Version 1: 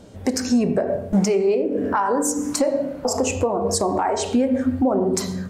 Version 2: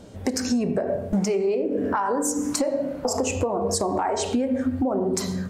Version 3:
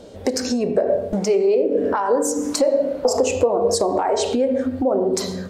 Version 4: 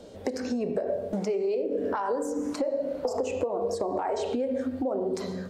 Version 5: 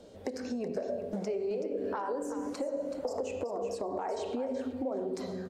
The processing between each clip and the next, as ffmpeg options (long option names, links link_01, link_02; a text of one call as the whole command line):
ffmpeg -i in.wav -af "acompressor=threshold=-21dB:ratio=3" out.wav
ffmpeg -i in.wav -af "equalizer=frequency=125:width_type=o:width=1:gain=-6,equalizer=frequency=500:width_type=o:width=1:gain=9,equalizer=frequency=4000:width_type=o:width=1:gain=6" out.wav
ffmpeg -i in.wav -filter_complex "[0:a]acrossover=split=110|2800[link_01][link_02][link_03];[link_01]acompressor=threshold=-48dB:ratio=4[link_04];[link_02]acompressor=threshold=-20dB:ratio=4[link_05];[link_03]acompressor=threshold=-42dB:ratio=4[link_06];[link_04][link_05][link_06]amix=inputs=3:normalize=0,volume=-5.5dB" out.wav
ffmpeg -i in.wav -af "aecho=1:1:377|754|1131:0.316|0.0569|0.0102,volume=-6dB" out.wav